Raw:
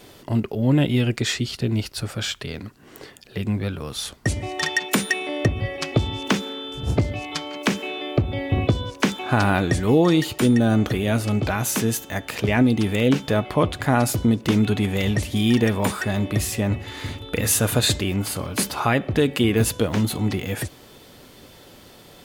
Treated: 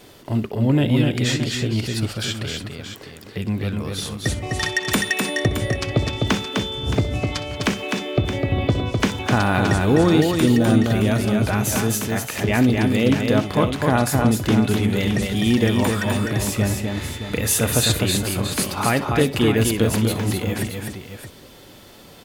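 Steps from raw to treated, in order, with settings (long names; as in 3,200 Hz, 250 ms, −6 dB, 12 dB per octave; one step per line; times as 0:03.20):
multi-tap delay 63/254/307/620 ms −16.5/−4/−20/−10 dB
surface crackle 110 per second −48 dBFS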